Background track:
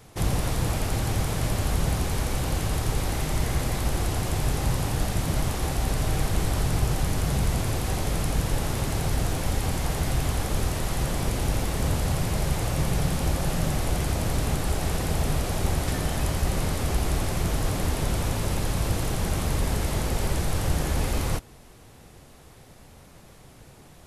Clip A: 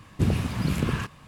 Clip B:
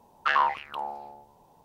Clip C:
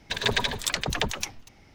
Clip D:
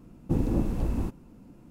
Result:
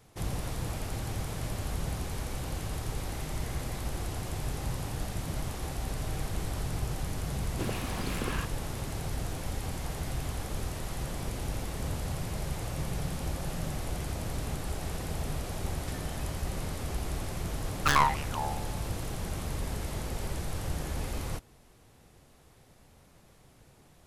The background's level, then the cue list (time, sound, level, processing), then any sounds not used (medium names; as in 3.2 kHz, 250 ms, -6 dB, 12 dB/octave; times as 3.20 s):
background track -9 dB
7.39 s: add A -3.5 dB + high-pass 320 Hz
17.60 s: add B -1 dB + tracing distortion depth 0.28 ms
not used: C, D